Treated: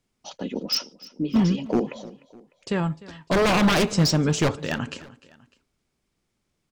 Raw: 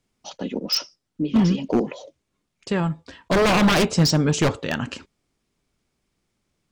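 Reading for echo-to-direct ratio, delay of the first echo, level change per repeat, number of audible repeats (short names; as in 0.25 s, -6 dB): -19.0 dB, 0.301 s, -6.0 dB, 2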